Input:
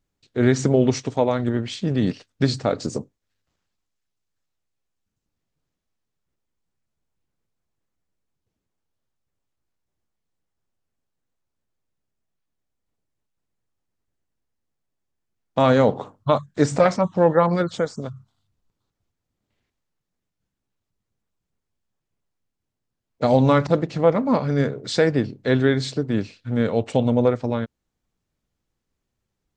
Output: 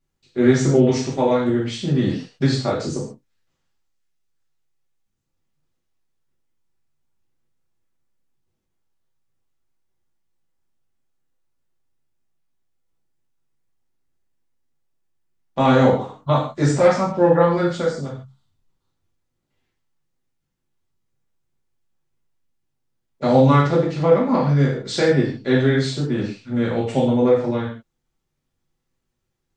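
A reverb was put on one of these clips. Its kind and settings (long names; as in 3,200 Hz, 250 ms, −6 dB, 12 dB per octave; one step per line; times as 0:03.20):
reverb whose tail is shaped and stops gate 180 ms falling, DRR −6 dB
level −5 dB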